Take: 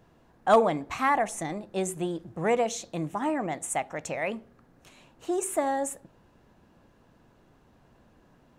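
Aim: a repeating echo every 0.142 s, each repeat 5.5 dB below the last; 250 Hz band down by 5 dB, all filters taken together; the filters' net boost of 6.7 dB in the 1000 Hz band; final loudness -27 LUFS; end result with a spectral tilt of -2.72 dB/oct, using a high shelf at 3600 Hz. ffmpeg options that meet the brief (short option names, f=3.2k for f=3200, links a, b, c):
-af "equalizer=f=250:t=o:g=-8,equalizer=f=1k:t=o:g=9,highshelf=f=3.6k:g=6,aecho=1:1:142|284|426|568|710|852|994:0.531|0.281|0.149|0.079|0.0419|0.0222|0.0118,volume=-3.5dB"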